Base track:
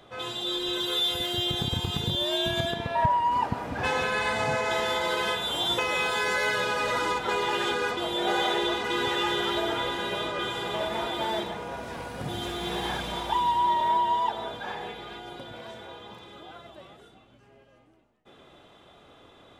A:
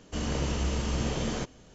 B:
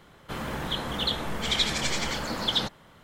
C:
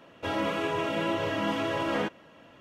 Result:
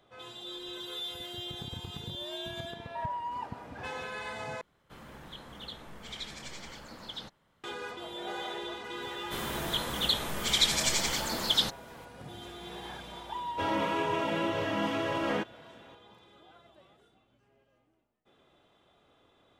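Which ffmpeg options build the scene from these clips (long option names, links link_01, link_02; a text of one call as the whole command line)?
ffmpeg -i bed.wav -i cue0.wav -i cue1.wav -i cue2.wav -filter_complex "[2:a]asplit=2[link_01][link_02];[0:a]volume=-12dB[link_03];[link_02]crystalizer=i=2.5:c=0[link_04];[link_03]asplit=2[link_05][link_06];[link_05]atrim=end=4.614[link_07];[link_01]atrim=end=3.03,asetpts=PTS-STARTPTS,volume=-16dB[link_08];[link_06]atrim=start=7.636[link_09];[link_04]atrim=end=3.03,asetpts=PTS-STARTPTS,volume=-5dB,afade=type=in:duration=0.004:curve=hsin,afade=type=out:start_time=3.026:duration=0.004:curve=hsin,adelay=9020[link_10];[3:a]atrim=end=2.6,asetpts=PTS-STARTPTS,volume=-2dB,afade=type=in:duration=0.004:curve=hsin,afade=type=out:start_time=2.596:duration=0.004:curve=hsin,adelay=13350[link_11];[link_07][link_08]acrossfade=duration=0.004:curve1=hsin:curve2=hsin[link_12];[link_12][link_09]acrossfade=duration=0.004:curve1=hsin:curve2=hsin[link_13];[link_13][link_10][link_11]amix=inputs=3:normalize=0" out.wav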